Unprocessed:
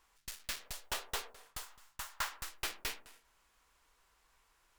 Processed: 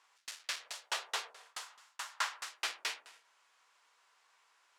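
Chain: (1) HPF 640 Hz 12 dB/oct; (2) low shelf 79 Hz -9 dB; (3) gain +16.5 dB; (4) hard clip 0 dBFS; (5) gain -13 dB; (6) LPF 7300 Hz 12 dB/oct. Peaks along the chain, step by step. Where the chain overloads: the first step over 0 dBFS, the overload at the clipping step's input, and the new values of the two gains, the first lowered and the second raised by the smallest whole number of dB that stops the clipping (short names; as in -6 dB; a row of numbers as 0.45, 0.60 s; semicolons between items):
-22.0, -22.0, -5.5, -5.5, -18.5, -20.0 dBFS; no overload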